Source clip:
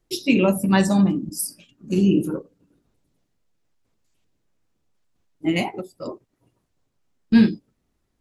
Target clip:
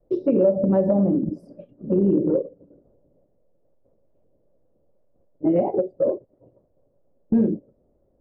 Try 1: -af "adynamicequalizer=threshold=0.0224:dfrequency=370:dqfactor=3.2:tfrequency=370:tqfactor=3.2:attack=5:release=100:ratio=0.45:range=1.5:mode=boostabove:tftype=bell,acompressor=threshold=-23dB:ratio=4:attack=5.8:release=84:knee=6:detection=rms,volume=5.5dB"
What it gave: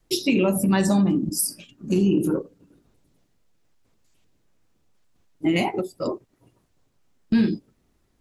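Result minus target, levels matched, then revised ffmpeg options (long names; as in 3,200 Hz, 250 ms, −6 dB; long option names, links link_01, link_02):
500 Hz band −5.0 dB
-af "adynamicequalizer=threshold=0.0224:dfrequency=370:dqfactor=3.2:tfrequency=370:tqfactor=3.2:attack=5:release=100:ratio=0.45:range=1.5:mode=boostabove:tftype=bell,lowpass=frequency=560:width_type=q:width=6.8,acompressor=threshold=-23dB:ratio=4:attack=5.8:release=84:knee=6:detection=rms,volume=5.5dB"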